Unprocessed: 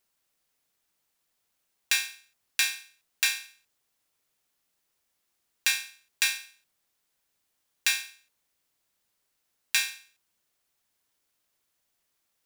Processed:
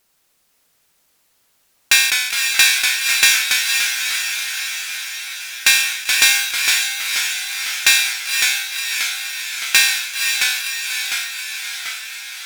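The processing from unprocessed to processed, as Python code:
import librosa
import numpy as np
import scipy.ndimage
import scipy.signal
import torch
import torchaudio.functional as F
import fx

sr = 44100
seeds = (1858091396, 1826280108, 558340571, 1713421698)

y = fx.echo_diffused(x, sr, ms=529, feedback_pct=65, wet_db=-4.5)
y = fx.fold_sine(y, sr, drive_db=9, ceiling_db=-3.0)
y = fx.echo_pitch(y, sr, ms=89, semitones=-1, count=3, db_per_echo=-6.0)
y = fx.sustainer(y, sr, db_per_s=57.0)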